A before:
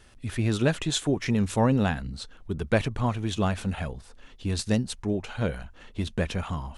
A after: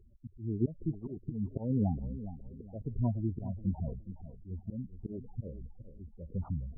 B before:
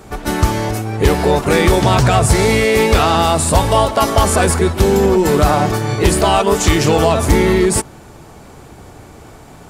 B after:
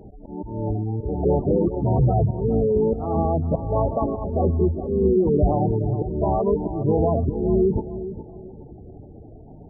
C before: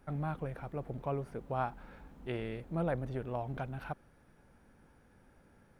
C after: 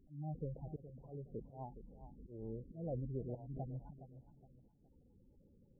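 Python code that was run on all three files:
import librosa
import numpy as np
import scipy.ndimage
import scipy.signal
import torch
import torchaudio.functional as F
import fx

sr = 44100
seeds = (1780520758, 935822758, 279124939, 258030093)

p1 = fx.wow_flutter(x, sr, seeds[0], rate_hz=2.1, depth_cents=35.0)
p2 = fx.auto_swell(p1, sr, attack_ms=257.0)
p3 = 10.0 ** (-6.5 / 20.0) * np.tanh(p2 / 10.0 ** (-6.5 / 20.0))
p4 = scipy.ndimage.gaussian_filter1d(p3, 9.8, mode='constant')
p5 = fx.spec_gate(p4, sr, threshold_db=-15, keep='strong')
p6 = p5 + fx.echo_feedback(p5, sr, ms=416, feedback_pct=32, wet_db=-12.5, dry=0)
y = p6 * librosa.db_to_amplitude(-2.5)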